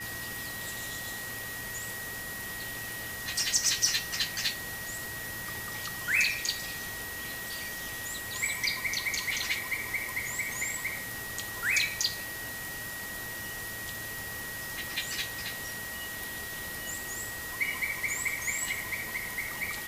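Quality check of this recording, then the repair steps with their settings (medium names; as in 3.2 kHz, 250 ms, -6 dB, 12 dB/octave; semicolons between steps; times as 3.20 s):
whine 1.9 kHz -39 dBFS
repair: band-stop 1.9 kHz, Q 30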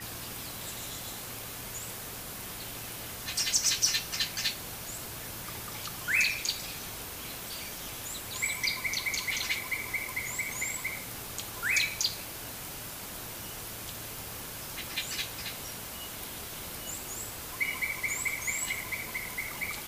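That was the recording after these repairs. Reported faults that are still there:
nothing left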